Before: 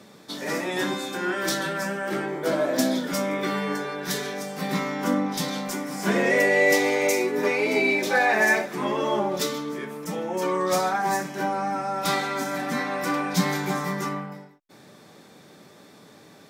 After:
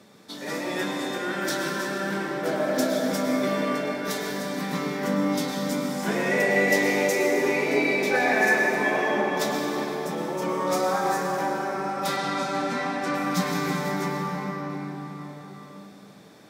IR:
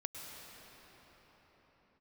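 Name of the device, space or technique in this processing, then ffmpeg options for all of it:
cathedral: -filter_complex "[1:a]atrim=start_sample=2205[a];[0:a][a]afir=irnorm=-1:irlink=0,asettb=1/sr,asplit=3[b][c][d];[b]atrim=end=12.164[e];[c]atrim=start=12.16:end=13.15,asetpts=PTS-STARTPTS,afade=t=in:d=0.004:c=qsin,afade=t=out:st=0.986:d=0.004:c=qsin,lowpass=8.1k[f];[d]atrim=start=13.146[g];[e][f]acrossfade=d=0.004:c1=hsin:c2=qsin[h];[h][g]acrossfade=d=0.004:c1=qsin:c2=hsin"

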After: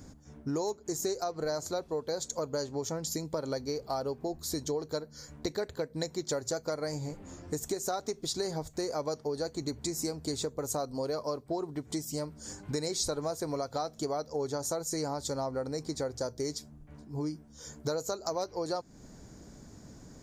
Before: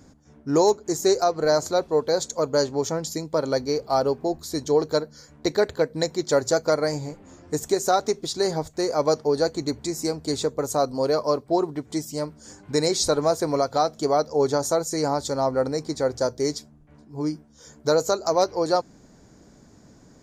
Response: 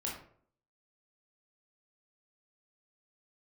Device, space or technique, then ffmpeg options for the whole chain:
ASMR close-microphone chain: -af "lowshelf=f=130:g=7,acompressor=threshold=-31dB:ratio=4,highshelf=f=6.3k:g=6.5,volume=-1.5dB"

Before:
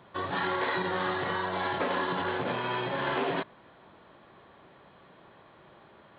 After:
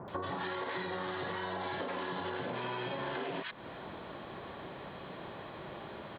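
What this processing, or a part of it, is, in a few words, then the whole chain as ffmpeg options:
serial compression, peaks first: -filter_complex "[0:a]acrossover=split=1300[a][b];[b]adelay=80[c];[a][c]amix=inputs=2:normalize=0,acompressor=threshold=-41dB:ratio=6,acompressor=threshold=-48dB:ratio=2.5,volume=11dB"

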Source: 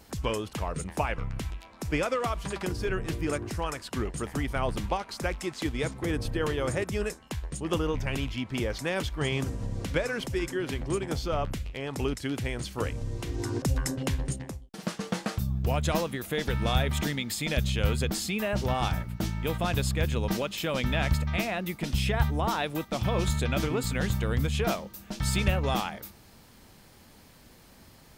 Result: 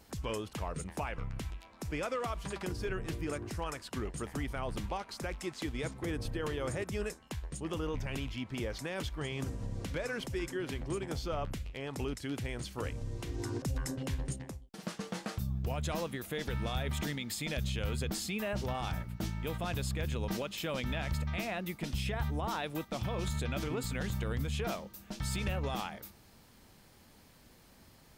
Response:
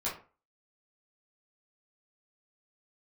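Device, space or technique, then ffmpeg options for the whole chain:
clipper into limiter: -af "asoftclip=type=hard:threshold=-15.5dB,alimiter=limit=-20.5dB:level=0:latency=1:release=35,volume=-5.5dB"

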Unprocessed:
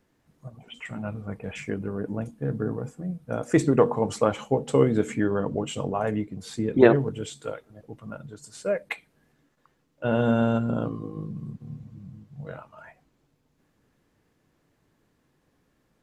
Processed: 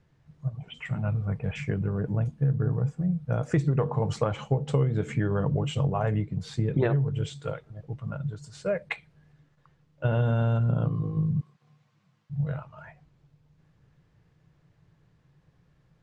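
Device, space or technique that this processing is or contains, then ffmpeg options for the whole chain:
jukebox: -filter_complex "[0:a]lowpass=5.5k,lowshelf=f=190:t=q:w=3:g=7,acompressor=threshold=-21dB:ratio=6,asettb=1/sr,asplit=3[a][b][c];[a]atrim=end=11.414[d];[b]atrim=start=11.41:end=12.3,asetpts=PTS-STARTPTS,afade=t=in:d=0.004:c=qsin,afade=t=out:st=0.886:d=0.004:c=qsin,highpass=1k[e];[c]atrim=start=12.296[f];[d][e]acrossfade=d=0.004:c1=hsin:c2=qsin[g];[g][f]acrossfade=d=0.004:c1=qsin:c2=hsin"

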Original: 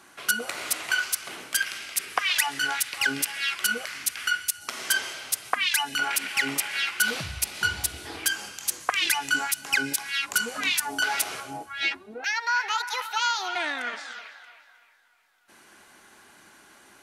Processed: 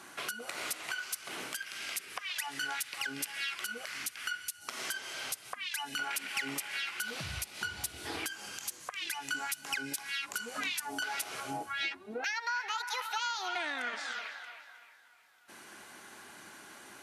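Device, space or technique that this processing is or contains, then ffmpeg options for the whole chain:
podcast mastering chain: -af "highpass=80,acompressor=threshold=-36dB:ratio=4,alimiter=limit=-24dB:level=0:latency=1:release=349,volume=2.5dB" -ar 32000 -c:a libmp3lame -b:a 128k

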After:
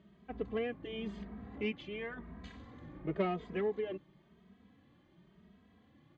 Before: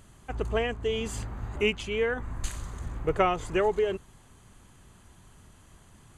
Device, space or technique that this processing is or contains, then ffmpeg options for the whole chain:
barber-pole flanger into a guitar amplifier: -filter_complex "[0:a]asplit=2[a][b];[b]adelay=2.8,afreqshift=0.94[c];[a][c]amix=inputs=2:normalize=1,asoftclip=type=tanh:threshold=-21.5dB,highpass=110,equalizer=f=110:t=q:w=4:g=-10,equalizer=f=200:t=q:w=4:g=8,equalizer=f=300:t=q:w=4:g=4,equalizer=f=900:t=q:w=4:g=-8,equalizer=f=1.4k:t=q:w=4:g=-10,equalizer=f=2.7k:t=q:w=4:g=-7,lowpass=f=3.4k:w=0.5412,lowpass=f=3.4k:w=1.3066,volume=-3dB"

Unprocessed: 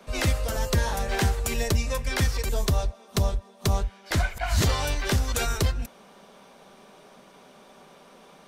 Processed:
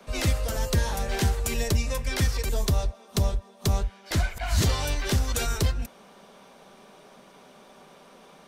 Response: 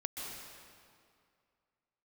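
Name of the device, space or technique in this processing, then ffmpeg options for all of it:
one-band saturation: -filter_complex "[0:a]acrossover=split=450|2700[a][b][c];[b]asoftclip=type=tanh:threshold=-31dB[d];[a][d][c]amix=inputs=3:normalize=0"

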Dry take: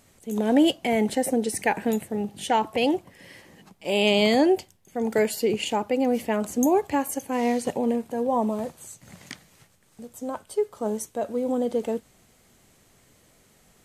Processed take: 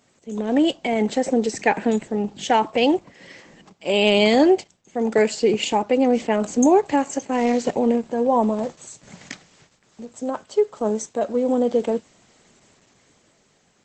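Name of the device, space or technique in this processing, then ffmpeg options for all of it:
video call: -af "highpass=150,dynaudnorm=f=220:g=9:m=6dB" -ar 48000 -c:a libopus -b:a 12k

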